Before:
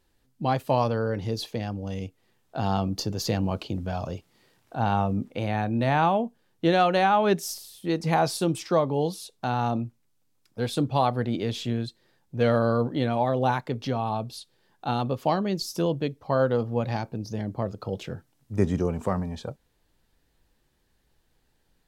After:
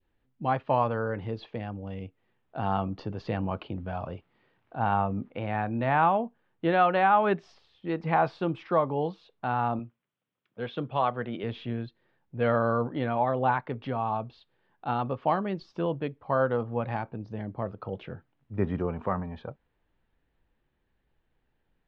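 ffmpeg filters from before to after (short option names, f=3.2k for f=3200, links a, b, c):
-filter_complex "[0:a]asettb=1/sr,asplit=3[a][b][c];[a]atrim=end=9.794[d];[b]atrim=start=9.79:end=11.44,asetpts=PTS-STARTPTS,afade=t=in:d=0.004:c=qsin,afade=t=out:st=1.646:d=0.004:c=qsin,highpass=150,equalizer=f=280:t=q:w=4:g=-6,equalizer=f=830:t=q:w=4:g=-5,equalizer=f=3.2k:t=q:w=4:g=6,equalizer=f=4.6k:t=q:w=4:g=-6,lowpass=f=6.7k:w=0.5412,lowpass=f=6.7k:w=1.3066[e];[c]atrim=start=11.436[f];[d][e]acrossfade=d=0.004:c1=hsin:c2=qsin[g];[g][f]acrossfade=d=0.004:c1=qsin:c2=hsin,lowpass=f=3k:w=0.5412,lowpass=f=3k:w=1.3066,adynamicequalizer=threshold=0.0126:dfrequency=1200:dqfactor=0.85:tfrequency=1200:tqfactor=0.85:attack=5:release=100:ratio=0.375:range=3.5:mode=boostabove:tftype=bell,volume=-5dB"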